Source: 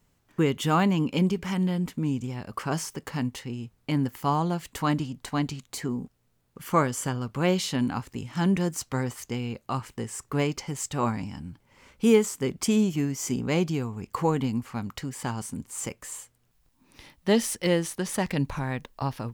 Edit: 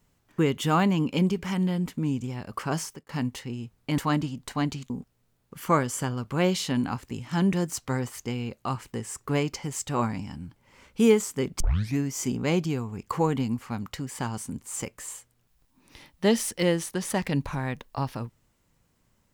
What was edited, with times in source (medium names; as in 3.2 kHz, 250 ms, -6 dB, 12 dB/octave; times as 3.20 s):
2.82–3.09 s: fade out
3.98–4.75 s: delete
5.67–5.94 s: delete
12.64 s: tape start 0.37 s